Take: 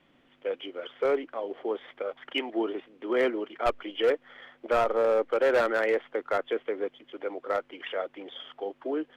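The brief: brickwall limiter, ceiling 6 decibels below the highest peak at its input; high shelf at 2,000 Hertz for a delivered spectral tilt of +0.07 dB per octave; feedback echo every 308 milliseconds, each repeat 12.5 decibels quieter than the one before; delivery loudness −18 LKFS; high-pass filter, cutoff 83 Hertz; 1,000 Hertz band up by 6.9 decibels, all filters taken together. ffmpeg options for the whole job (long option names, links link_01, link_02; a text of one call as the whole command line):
ffmpeg -i in.wav -af "highpass=83,equalizer=frequency=1000:width_type=o:gain=9,highshelf=frequency=2000:gain=4.5,alimiter=limit=-14.5dB:level=0:latency=1,aecho=1:1:308|616|924:0.237|0.0569|0.0137,volume=10dB" out.wav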